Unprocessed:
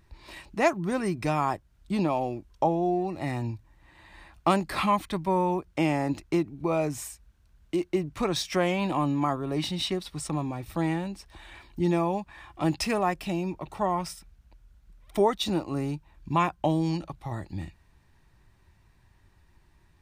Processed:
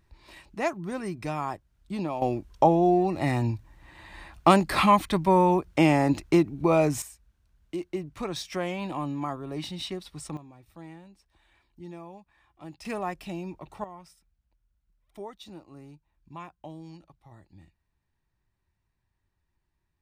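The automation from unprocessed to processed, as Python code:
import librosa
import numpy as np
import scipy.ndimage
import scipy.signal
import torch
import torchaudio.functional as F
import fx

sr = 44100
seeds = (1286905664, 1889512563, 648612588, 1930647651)

y = fx.gain(x, sr, db=fx.steps((0.0, -5.0), (2.22, 5.0), (7.02, -5.5), (10.37, -17.5), (12.85, -6.0), (13.84, -17.5)))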